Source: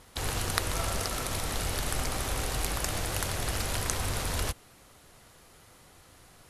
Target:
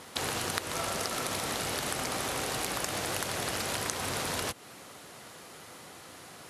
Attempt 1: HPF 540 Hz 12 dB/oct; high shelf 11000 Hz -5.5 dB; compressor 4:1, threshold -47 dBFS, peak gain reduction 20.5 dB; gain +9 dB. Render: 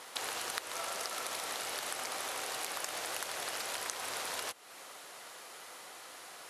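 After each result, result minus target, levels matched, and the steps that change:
125 Hz band -17.0 dB; compressor: peak gain reduction +5 dB
change: HPF 170 Hz 12 dB/oct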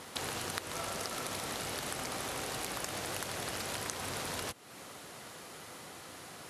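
compressor: peak gain reduction +5 dB
change: compressor 4:1, threshold -40 dBFS, peak gain reduction 15 dB

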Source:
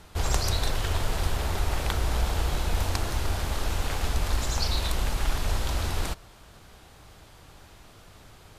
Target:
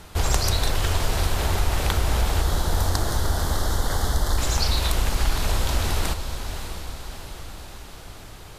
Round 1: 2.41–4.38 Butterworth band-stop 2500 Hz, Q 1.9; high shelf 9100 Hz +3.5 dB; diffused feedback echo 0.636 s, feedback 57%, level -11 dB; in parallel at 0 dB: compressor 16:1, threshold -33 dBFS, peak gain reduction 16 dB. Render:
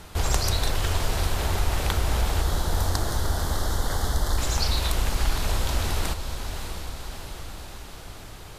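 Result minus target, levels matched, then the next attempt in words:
compressor: peak gain reduction +7.5 dB
2.41–4.38 Butterworth band-stop 2500 Hz, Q 1.9; high shelf 9100 Hz +3.5 dB; diffused feedback echo 0.636 s, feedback 57%, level -11 dB; in parallel at 0 dB: compressor 16:1, threshold -25 dBFS, peak gain reduction 8.5 dB

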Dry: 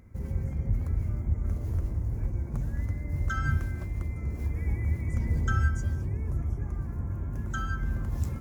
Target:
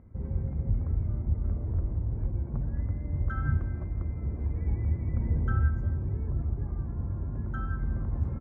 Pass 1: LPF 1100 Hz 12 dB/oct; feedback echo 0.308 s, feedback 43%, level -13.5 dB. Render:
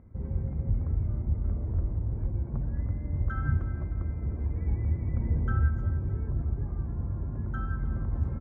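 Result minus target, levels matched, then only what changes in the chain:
echo-to-direct +9 dB
change: feedback echo 0.308 s, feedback 43%, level -22.5 dB

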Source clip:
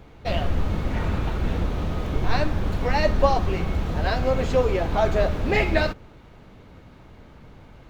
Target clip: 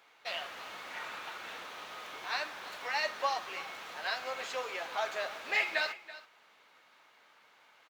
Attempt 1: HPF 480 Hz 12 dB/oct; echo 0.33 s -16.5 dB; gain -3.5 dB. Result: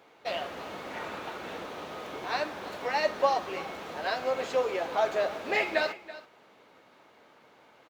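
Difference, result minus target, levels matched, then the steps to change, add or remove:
500 Hz band +6.5 dB
change: HPF 1200 Hz 12 dB/oct

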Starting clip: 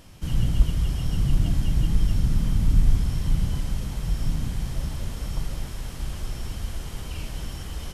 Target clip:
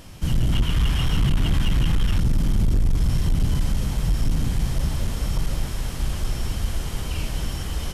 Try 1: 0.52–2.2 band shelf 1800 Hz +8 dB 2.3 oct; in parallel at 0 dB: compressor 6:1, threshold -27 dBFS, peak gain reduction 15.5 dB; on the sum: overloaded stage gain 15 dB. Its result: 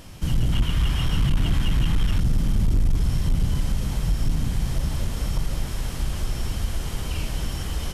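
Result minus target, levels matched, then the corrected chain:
compressor: peak gain reduction +6.5 dB
0.52–2.2 band shelf 1800 Hz +8 dB 2.3 oct; in parallel at 0 dB: compressor 6:1, threshold -19 dBFS, peak gain reduction 8.5 dB; on the sum: overloaded stage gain 15 dB

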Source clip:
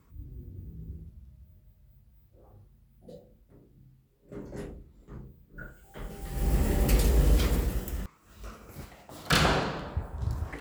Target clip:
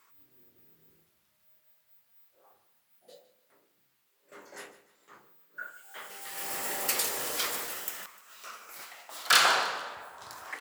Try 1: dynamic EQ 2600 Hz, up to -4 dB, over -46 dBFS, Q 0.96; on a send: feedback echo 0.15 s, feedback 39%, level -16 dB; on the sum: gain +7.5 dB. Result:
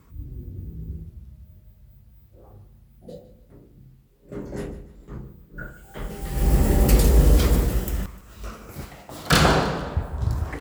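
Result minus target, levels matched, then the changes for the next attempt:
1000 Hz band -2.5 dB
add after dynamic EQ: HPF 1100 Hz 12 dB/oct

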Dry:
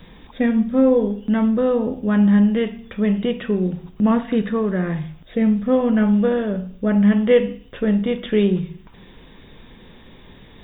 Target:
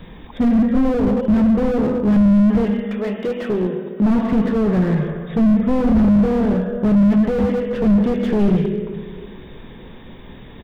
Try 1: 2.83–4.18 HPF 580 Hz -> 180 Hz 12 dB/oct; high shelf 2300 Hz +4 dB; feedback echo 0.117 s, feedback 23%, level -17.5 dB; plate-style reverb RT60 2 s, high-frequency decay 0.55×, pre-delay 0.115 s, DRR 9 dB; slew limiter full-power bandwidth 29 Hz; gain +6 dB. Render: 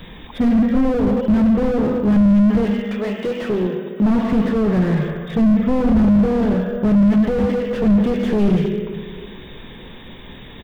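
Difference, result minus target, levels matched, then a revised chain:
4000 Hz band +4.0 dB
2.83–4.18 HPF 580 Hz -> 180 Hz 12 dB/oct; high shelf 2300 Hz -7 dB; feedback echo 0.117 s, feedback 23%, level -17.5 dB; plate-style reverb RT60 2 s, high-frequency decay 0.55×, pre-delay 0.115 s, DRR 9 dB; slew limiter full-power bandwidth 29 Hz; gain +6 dB

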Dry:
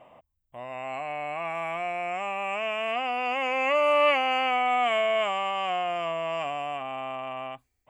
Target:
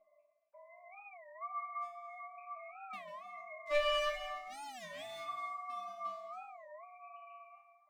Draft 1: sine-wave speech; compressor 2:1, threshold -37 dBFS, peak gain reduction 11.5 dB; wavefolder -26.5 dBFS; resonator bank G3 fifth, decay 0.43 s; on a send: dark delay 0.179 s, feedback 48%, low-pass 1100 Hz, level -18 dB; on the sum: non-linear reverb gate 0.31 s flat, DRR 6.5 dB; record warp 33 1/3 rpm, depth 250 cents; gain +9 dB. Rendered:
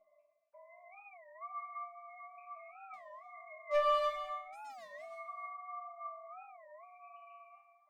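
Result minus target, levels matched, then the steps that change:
compressor: peak gain reduction +3.5 dB
change: compressor 2:1, threshold -30 dBFS, peak gain reduction 8 dB

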